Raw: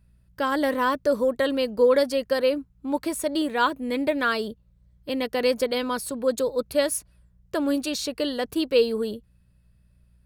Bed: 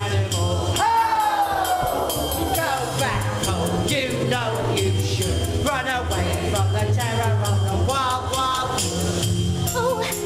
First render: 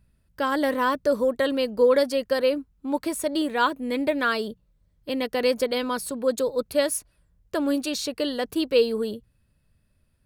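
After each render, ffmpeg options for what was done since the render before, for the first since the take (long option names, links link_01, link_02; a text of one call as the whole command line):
ffmpeg -i in.wav -af "bandreject=frequency=60:width_type=h:width=4,bandreject=frequency=120:width_type=h:width=4,bandreject=frequency=180:width_type=h:width=4" out.wav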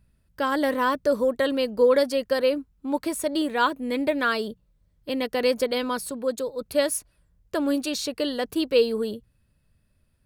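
ffmpeg -i in.wav -filter_complex "[0:a]asplit=2[link_01][link_02];[link_01]atrim=end=6.61,asetpts=PTS-STARTPTS,afade=type=out:start_time=5.91:duration=0.7:silence=0.473151[link_03];[link_02]atrim=start=6.61,asetpts=PTS-STARTPTS,afade=type=in:duration=0.004:curve=hsin:silence=0.473151[link_04];[link_03][link_04]concat=n=2:v=0:a=1" out.wav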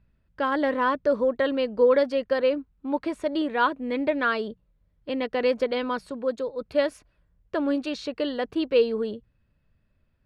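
ffmpeg -i in.wav -af "lowpass=2900,equalizer=frequency=93:width_type=o:width=2.9:gain=-2.5" out.wav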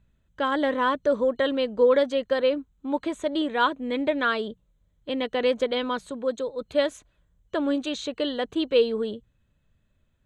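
ffmpeg -i in.wav -af "superequalizer=13b=2:14b=0.631:15b=2.82" out.wav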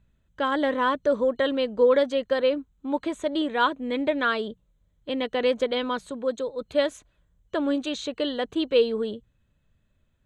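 ffmpeg -i in.wav -af anull out.wav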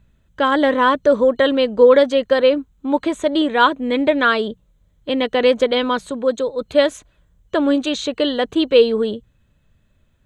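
ffmpeg -i in.wav -af "volume=8.5dB,alimiter=limit=-2dB:level=0:latency=1" out.wav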